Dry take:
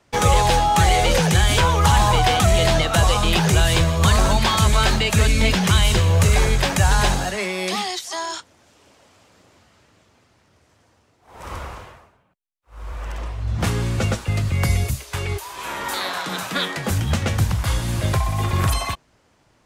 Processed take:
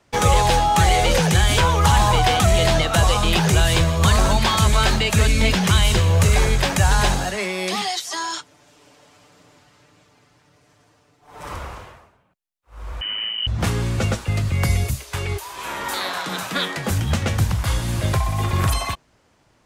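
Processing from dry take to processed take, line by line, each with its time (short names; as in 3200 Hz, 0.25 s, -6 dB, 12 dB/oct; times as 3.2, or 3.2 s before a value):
7.81–11.54 comb 6.8 ms, depth 76%
13.01–13.47 inverted band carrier 3000 Hz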